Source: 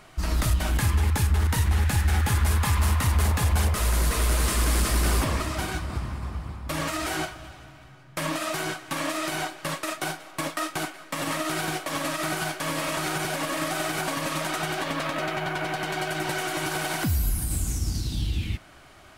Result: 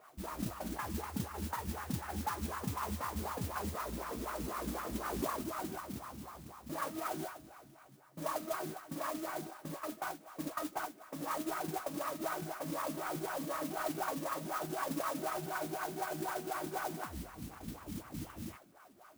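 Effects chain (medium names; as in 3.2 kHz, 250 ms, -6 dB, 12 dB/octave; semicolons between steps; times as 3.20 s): CVSD coder 16 kbps; wah-wah 4 Hz 200–1200 Hz, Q 3.5; modulation noise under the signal 10 dB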